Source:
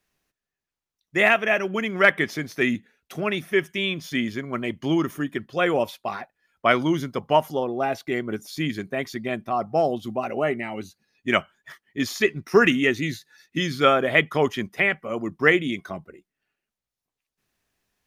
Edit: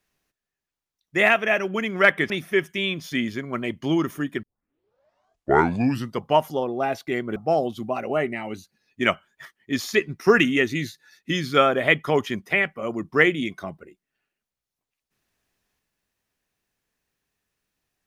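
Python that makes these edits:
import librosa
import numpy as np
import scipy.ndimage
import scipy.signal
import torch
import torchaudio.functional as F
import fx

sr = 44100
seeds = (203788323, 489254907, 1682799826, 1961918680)

y = fx.edit(x, sr, fx.cut(start_s=2.3, length_s=1.0),
    fx.tape_start(start_s=5.43, length_s=1.82),
    fx.cut(start_s=8.36, length_s=1.27), tone=tone)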